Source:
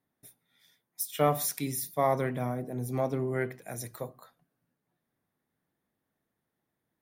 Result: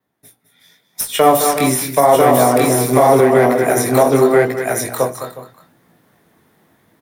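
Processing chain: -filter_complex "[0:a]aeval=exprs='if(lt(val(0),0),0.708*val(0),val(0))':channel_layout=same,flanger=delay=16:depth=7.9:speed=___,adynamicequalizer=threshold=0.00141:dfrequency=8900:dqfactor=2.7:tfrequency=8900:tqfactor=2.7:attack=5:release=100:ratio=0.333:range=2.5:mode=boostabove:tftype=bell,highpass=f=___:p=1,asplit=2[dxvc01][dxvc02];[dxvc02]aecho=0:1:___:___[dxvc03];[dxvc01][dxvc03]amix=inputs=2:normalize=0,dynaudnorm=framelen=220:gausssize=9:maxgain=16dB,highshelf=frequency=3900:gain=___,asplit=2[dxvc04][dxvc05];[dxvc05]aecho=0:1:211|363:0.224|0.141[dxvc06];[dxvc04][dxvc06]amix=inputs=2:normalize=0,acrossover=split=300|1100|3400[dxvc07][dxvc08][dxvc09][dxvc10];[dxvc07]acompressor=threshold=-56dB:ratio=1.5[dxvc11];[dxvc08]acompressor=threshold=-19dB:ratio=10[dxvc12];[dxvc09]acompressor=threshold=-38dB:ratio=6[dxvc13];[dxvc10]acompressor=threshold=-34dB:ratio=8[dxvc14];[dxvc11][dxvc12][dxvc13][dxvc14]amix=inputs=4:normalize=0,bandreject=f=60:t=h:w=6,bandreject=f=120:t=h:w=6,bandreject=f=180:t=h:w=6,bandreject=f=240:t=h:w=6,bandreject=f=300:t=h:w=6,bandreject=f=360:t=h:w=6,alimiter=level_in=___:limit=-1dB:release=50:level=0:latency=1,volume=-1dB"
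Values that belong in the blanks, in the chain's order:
0.84, 82, 992, 0.668, -3.5, 16dB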